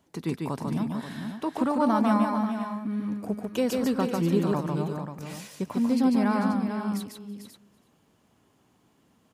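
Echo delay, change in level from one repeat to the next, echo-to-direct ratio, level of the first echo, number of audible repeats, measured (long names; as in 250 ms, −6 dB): 146 ms, repeats not evenly spaced, −1.5 dB, −3.5 dB, 6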